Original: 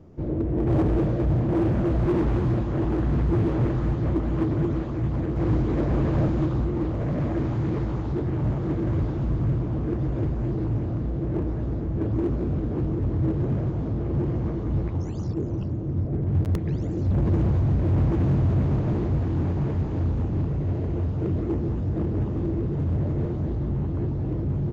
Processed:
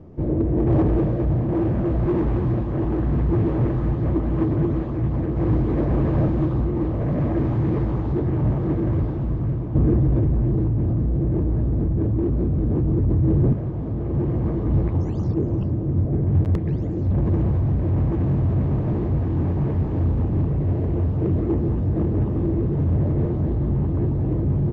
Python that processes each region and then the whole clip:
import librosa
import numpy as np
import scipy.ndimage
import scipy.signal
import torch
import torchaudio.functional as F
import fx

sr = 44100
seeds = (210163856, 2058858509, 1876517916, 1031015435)

y = fx.chain(x, sr, fx.low_shelf(hz=340.0, db=7.5),
    fx.env_flatten(amount_pct=100), at=(9.75, 13.53))
y = fx.lowpass(y, sr, hz=1800.0, slope=6)
y = fx.notch(y, sr, hz=1400.0, q=15.0)
y = fx.rider(y, sr, range_db=10, speed_s=2.0)